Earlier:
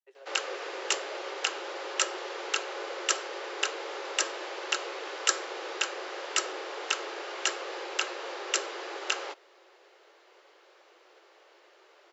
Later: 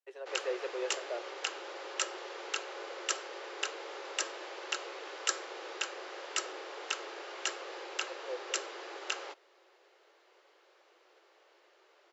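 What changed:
speech +8.0 dB; background -6.0 dB

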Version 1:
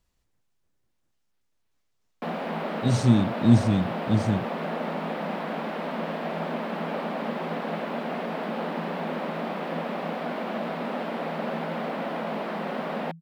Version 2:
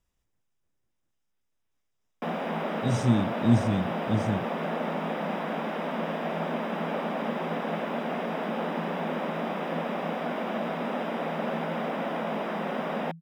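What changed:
speech -4.0 dB; master: add Butterworth band-stop 4.3 kHz, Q 6.5

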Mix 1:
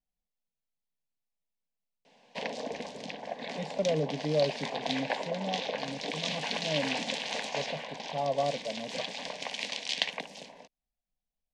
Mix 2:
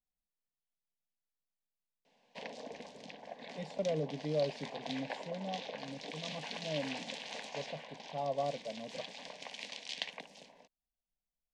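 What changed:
speech -5.5 dB; background -9.5 dB

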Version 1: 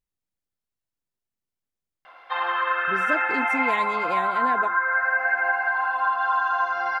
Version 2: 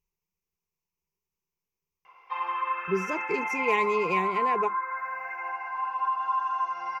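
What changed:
background -10.5 dB; master: add rippled EQ curve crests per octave 0.78, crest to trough 16 dB

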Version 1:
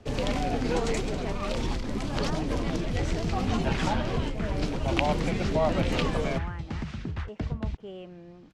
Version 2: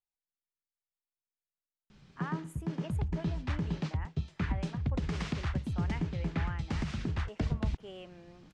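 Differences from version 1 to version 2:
speech: add bass shelf 450 Hz -10.5 dB; first sound: muted; master: add treble shelf 6.6 kHz +8 dB

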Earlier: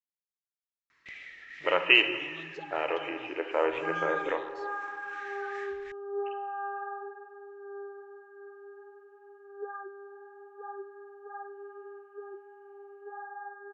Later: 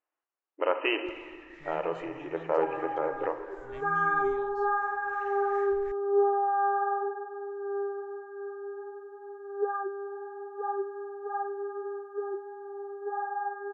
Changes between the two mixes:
speech: entry -1.05 s; second sound +9.5 dB; master: remove frequency weighting D

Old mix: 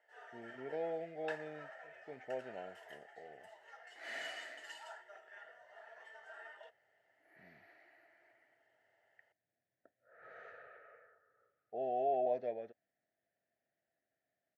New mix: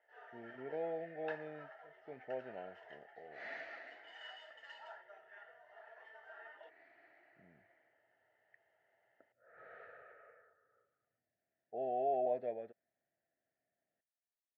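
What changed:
second sound: entry -0.65 s; master: add distance through air 240 m

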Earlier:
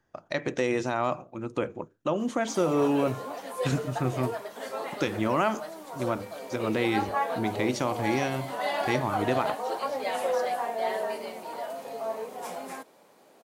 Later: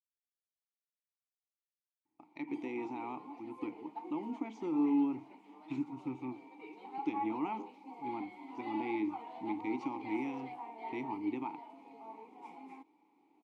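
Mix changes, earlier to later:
speech: entry +2.05 s; master: add vowel filter u

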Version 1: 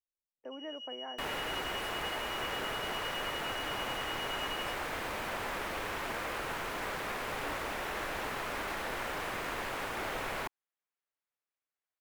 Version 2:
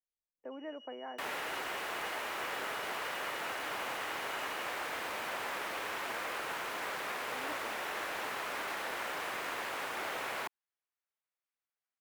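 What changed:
first sound -11.0 dB; second sound: add high-pass 470 Hz 6 dB/octave

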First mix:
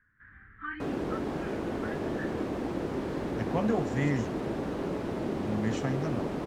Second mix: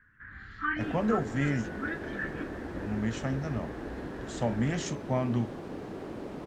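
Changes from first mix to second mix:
speech: entry -2.60 s; first sound +7.0 dB; second sound -6.5 dB

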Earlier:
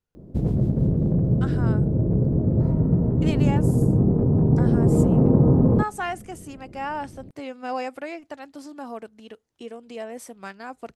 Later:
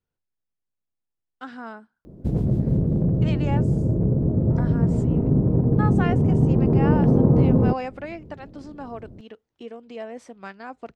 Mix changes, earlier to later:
speech: add distance through air 120 m; background: entry +1.90 s

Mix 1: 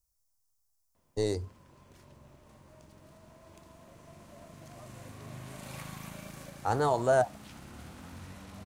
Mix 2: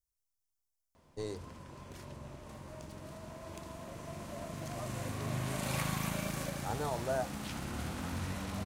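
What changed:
speech -10.0 dB; background +8.5 dB

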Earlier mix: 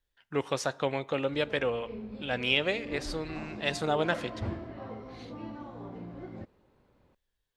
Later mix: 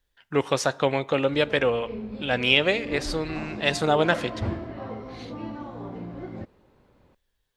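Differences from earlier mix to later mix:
speech +7.0 dB; background +6.0 dB

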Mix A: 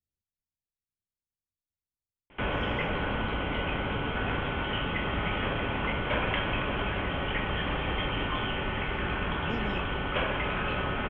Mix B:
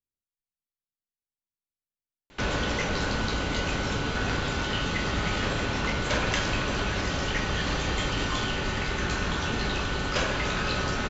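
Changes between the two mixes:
speech: add peaking EQ 78 Hz -10.5 dB 2.1 oct; background: remove rippled Chebyshev low-pass 3.3 kHz, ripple 3 dB

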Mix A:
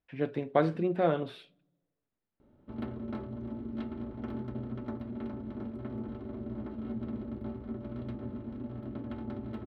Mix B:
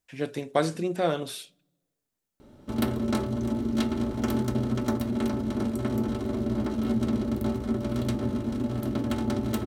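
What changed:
background +10.5 dB; master: remove distance through air 420 m

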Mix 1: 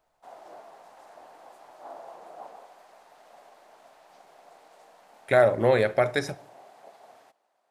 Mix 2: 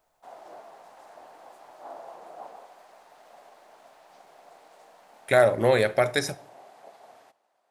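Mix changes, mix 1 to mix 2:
speech: add treble shelf 4.3 kHz +11 dB; background: send +10.0 dB

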